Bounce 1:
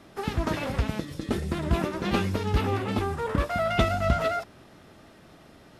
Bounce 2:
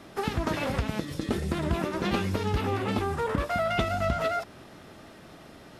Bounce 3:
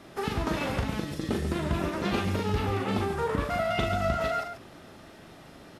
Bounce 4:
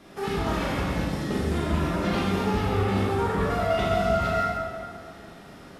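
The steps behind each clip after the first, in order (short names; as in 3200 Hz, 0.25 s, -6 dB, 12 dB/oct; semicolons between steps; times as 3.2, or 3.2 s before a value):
low shelf 140 Hz -3 dB; compressor 3:1, threshold -29 dBFS, peak gain reduction 9 dB; gain +4 dB
loudspeakers at several distances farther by 14 m -5 dB, 48 m -8 dB; gain -2 dB
plate-style reverb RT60 2.1 s, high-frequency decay 0.55×, DRR -4.5 dB; gain -2.5 dB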